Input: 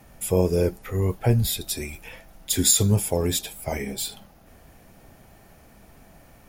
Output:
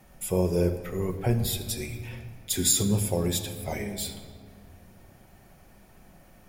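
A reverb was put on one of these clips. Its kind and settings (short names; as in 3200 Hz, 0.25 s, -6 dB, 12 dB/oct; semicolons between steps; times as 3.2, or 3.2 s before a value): shoebox room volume 3200 m³, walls mixed, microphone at 1 m; gain -4.5 dB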